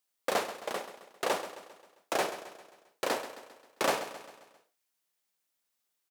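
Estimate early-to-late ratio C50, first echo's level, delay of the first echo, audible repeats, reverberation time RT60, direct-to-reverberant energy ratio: no reverb audible, −12.5 dB, 133 ms, 4, no reverb audible, no reverb audible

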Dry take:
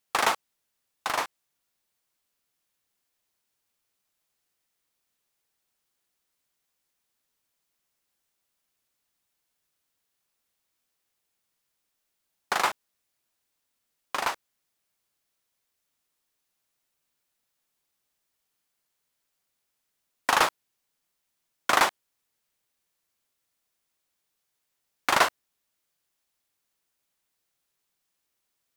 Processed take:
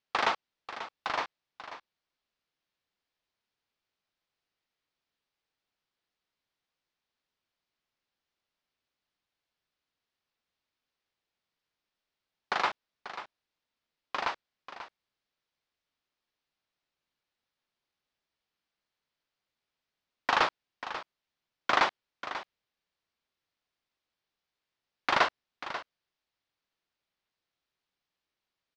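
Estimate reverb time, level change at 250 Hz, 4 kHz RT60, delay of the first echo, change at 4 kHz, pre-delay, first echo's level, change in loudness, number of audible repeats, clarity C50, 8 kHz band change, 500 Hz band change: no reverb audible, −3.5 dB, no reverb audible, 539 ms, −4.0 dB, no reverb audible, −12.5 dB, −5.0 dB, 1, no reverb audible, −15.0 dB, −3.5 dB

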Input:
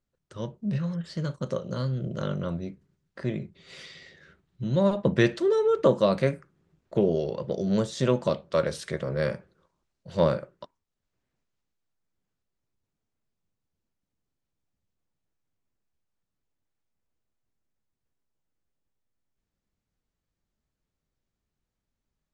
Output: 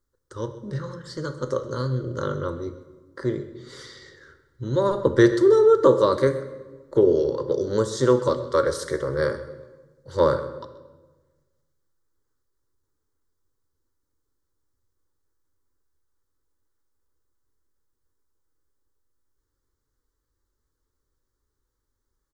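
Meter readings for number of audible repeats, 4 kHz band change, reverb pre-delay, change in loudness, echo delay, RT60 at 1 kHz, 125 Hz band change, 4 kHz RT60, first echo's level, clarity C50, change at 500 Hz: 1, +1.5 dB, 13 ms, +5.0 dB, 130 ms, 1.2 s, 0.0 dB, 1.0 s, −16.5 dB, 11.5 dB, +6.0 dB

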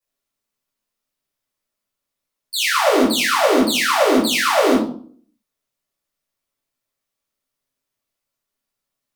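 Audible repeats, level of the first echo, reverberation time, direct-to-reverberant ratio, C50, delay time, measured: no echo audible, no echo audible, 0.50 s, −10.0 dB, 5.0 dB, no echo audible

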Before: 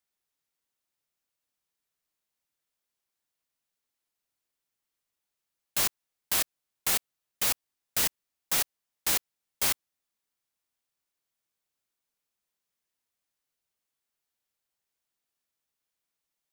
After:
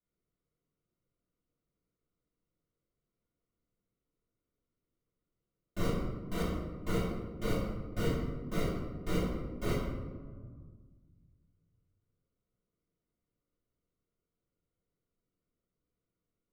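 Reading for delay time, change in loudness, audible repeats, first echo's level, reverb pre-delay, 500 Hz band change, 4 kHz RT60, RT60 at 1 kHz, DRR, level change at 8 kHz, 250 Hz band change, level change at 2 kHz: no echo audible, −8.0 dB, no echo audible, no echo audible, 3 ms, +8.5 dB, 0.70 s, 1.6 s, −8.0 dB, −22.5 dB, +13.0 dB, −8.5 dB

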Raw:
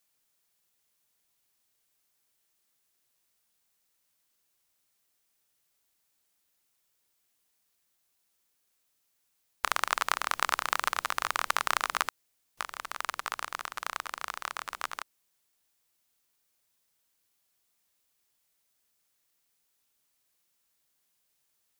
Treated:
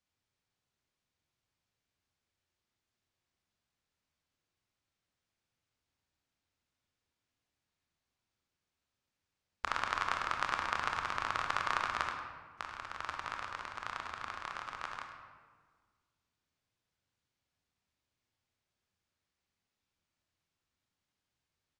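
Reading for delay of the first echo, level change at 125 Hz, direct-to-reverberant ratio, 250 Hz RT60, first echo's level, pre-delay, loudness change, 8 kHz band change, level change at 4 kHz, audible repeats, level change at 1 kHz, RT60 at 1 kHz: 103 ms, can't be measured, 2.0 dB, 2.1 s, −11.0 dB, 24 ms, −5.0 dB, −14.5 dB, −7.5 dB, 1, −4.0 dB, 1.6 s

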